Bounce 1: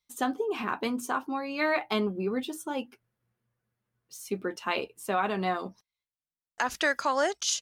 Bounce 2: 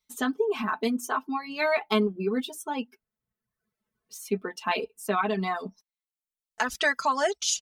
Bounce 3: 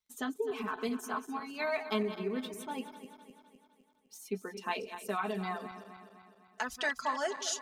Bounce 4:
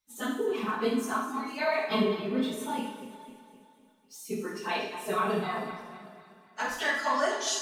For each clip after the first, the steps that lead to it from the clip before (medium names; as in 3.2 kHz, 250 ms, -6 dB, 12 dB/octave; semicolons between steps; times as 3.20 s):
comb 4.6 ms, depth 88%; reverb removal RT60 0.86 s
backward echo that repeats 127 ms, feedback 72%, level -11.5 dB; crackle 36 per s -58 dBFS; trim -8.5 dB
phase randomisation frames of 50 ms; Schroeder reverb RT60 0.6 s, combs from 27 ms, DRR 1 dB; trim +3 dB